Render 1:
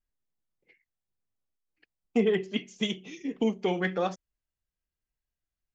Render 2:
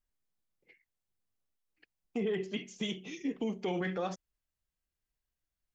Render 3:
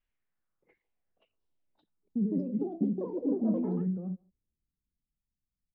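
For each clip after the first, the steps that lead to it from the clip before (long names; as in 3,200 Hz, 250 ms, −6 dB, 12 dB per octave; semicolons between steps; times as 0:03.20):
brickwall limiter −25.5 dBFS, peak gain reduction 11.5 dB
far-end echo of a speakerphone 150 ms, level −23 dB; low-pass filter sweep 2,700 Hz → 210 Hz, 0:00.05–0:01.88; delay with pitch and tempo change per echo 701 ms, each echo +5 semitones, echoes 3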